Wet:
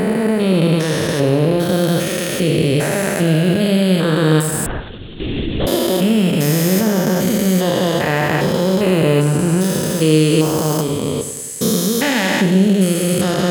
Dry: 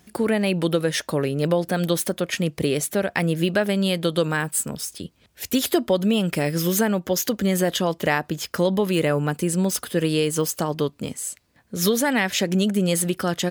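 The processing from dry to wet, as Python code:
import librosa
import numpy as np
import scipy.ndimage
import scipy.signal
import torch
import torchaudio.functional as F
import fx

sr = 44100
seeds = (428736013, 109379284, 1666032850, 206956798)

p1 = fx.spec_steps(x, sr, hold_ms=400)
p2 = fx.rider(p1, sr, range_db=5, speed_s=0.5)
p3 = p1 + (p2 * 10.0 ** (1.0 / 20.0))
p4 = fx.doubler(p3, sr, ms=32.0, db=-11.0)
p5 = fx.echo_feedback(p4, sr, ms=96, feedback_pct=58, wet_db=-11.5)
p6 = fx.lpc_vocoder(p5, sr, seeds[0], excitation='whisper', order=10, at=(4.66, 5.67))
y = p6 * 10.0 ** (4.0 / 20.0)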